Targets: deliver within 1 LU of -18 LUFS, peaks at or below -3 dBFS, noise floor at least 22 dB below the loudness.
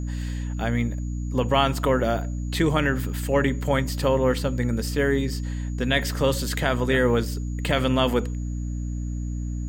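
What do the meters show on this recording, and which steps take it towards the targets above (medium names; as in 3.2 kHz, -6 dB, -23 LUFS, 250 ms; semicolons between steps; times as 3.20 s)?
hum 60 Hz; highest harmonic 300 Hz; hum level -26 dBFS; steady tone 6.8 kHz; tone level -51 dBFS; loudness -24.5 LUFS; peak level -6.5 dBFS; loudness target -18.0 LUFS
-> hum notches 60/120/180/240/300 Hz; band-stop 6.8 kHz, Q 30; trim +6.5 dB; peak limiter -3 dBFS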